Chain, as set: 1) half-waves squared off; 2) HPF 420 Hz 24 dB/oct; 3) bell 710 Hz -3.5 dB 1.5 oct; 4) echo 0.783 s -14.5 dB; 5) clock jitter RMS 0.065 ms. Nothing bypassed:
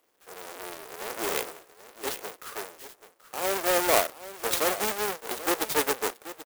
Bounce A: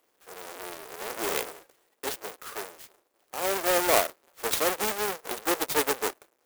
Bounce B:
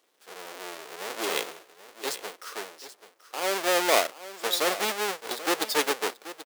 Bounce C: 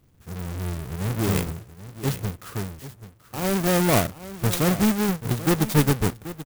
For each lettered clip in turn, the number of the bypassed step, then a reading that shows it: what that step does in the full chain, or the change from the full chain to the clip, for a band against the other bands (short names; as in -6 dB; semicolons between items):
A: 4, momentary loudness spread change -2 LU; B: 5, 4 kHz band +4.0 dB; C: 2, 125 Hz band +28.0 dB